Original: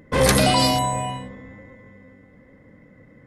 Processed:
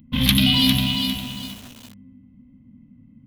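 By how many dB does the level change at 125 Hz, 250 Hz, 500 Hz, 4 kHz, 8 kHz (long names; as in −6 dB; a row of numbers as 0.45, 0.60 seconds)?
+1.0, +4.0, −21.0, +6.0, −6.0 decibels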